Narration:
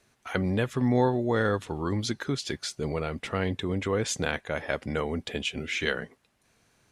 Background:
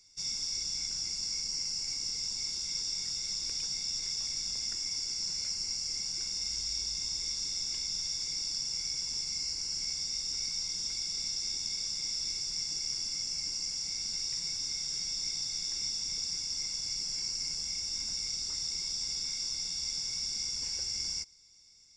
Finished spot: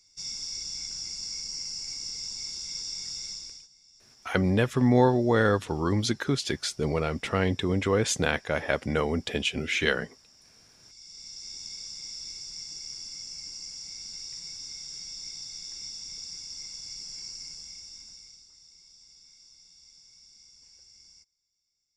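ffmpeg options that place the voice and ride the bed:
-filter_complex "[0:a]adelay=4000,volume=3dB[a];[1:a]volume=17.5dB,afade=t=out:st=3.23:d=0.45:silence=0.0749894,afade=t=in:st=10.79:d=0.84:silence=0.11885,afade=t=out:st=17.29:d=1.19:silence=0.177828[b];[a][b]amix=inputs=2:normalize=0"

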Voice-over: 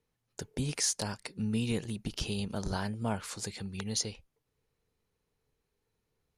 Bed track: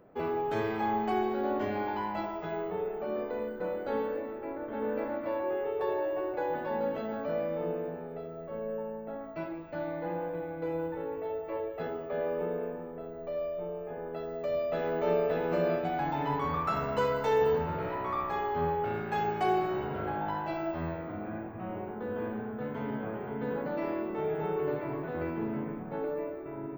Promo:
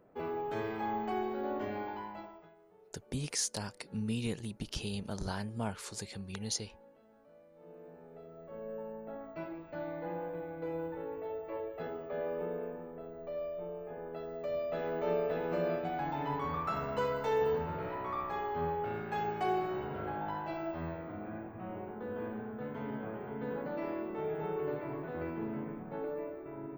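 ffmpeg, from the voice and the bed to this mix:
-filter_complex "[0:a]adelay=2550,volume=-3.5dB[a];[1:a]volume=18dB,afade=t=out:st=1.74:d=0.81:silence=0.0749894,afade=t=in:st=7.54:d=1.5:silence=0.0668344[b];[a][b]amix=inputs=2:normalize=0"

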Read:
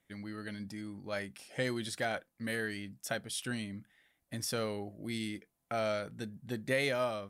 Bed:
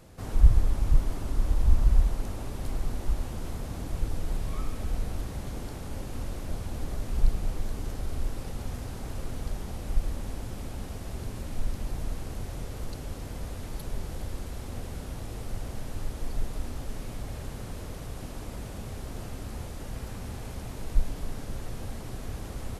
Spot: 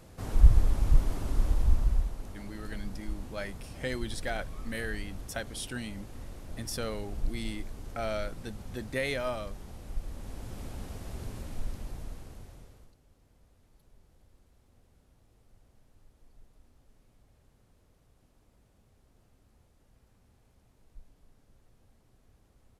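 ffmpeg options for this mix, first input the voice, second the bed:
-filter_complex "[0:a]adelay=2250,volume=-0.5dB[a];[1:a]volume=5dB,afade=t=out:st=1.4:d=0.73:silence=0.375837,afade=t=in:st=10.06:d=0.57:silence=0.530884,afade=t=out:st=11.34:d=1.61:silence=0.0668344[b];[a][b]amix=inputs=2:normalize=0"

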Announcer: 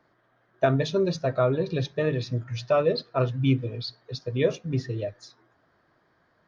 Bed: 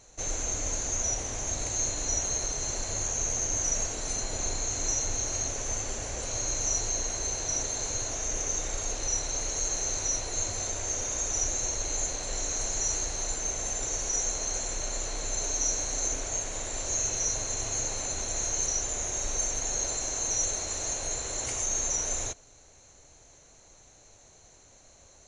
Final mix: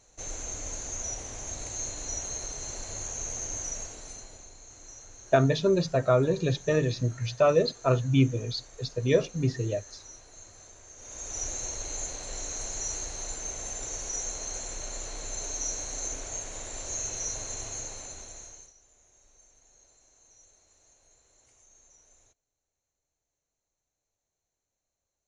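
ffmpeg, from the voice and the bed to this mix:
-filter_complex "[0:a]adelay=4700,volume=0.5dB[a];[1:a]volume=9dB,afade=t=out:st=3.52:d=0.95:silence=0.211349,afade=t=in:st=10.96:d=0.51:silence=0.188365,afade=t=out:st=17.54:d=1.19:silence=0.0501187[b];[a][b]amix=inputs=2:normalize=0"

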